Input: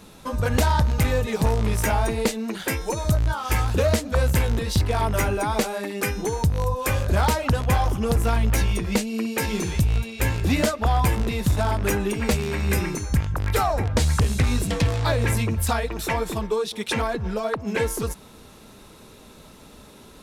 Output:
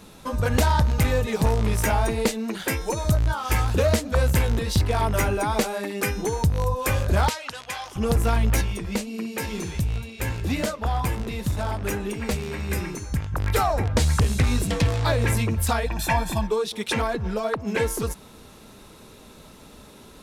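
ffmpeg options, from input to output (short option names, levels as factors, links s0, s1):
-filter_complex "[0:a]asplit=3[s0][s1][s2];[s0]afade=t=out:st=7.28:d=0.02[s3];[s1]bandpass=f=4100:t=q:w=0.63,afade=t=in:st=7.28:d=0.02,afade=t=out:st=7.95:d=0.02[s4];[s2]afade=t=in:st=7.95:d=0.02[s5];[s3][s4][s5]amix=inputs=3:normalize=0,asettb=1/sr,asplit=3[s6][s7][s8];[s6]atrim=end=8.614[s9];[s7]atrim=start=8.61:end=13.33,asetpts=PTS-STARTPTS,afade=t=in:d=0.004:c=qsin,afade=t=out:st=4.716:d=0.004:c=qsin,flanger=delay=5.1:depth=7.3:regen=-81:speed=2:shape=triangular[s10];[s8]atrim=start=13.326[s11];[s9][s10]acrossfade=d=0.004:c1=hsin:c2=qsin[s12];[s12][s11]acrossfade=d=0.004:c1=qsin:c2=hsin,asettb=1/sr,asplit=3[s13][s14][s15];[s13]atrim=end=15.864[s16];[s14]atrim=start=15.86:end=16.48,asetpts=PTS-STARTPTS,afade=t=in:d=0.004:c=qsin,afade=t=out:st=0.616:d=0.004:c=qsin,aecho=1:1:1.2:0.76,atrim=end_sample=27342[s17];[s15]atrim=start=16.476[s18];[s16][s17]acrossfade=d=0.004:c1=hsin:c2=qsin[s19];[s19][s18]acrossfade=d=0.004:c1=qsin:c2=hsin"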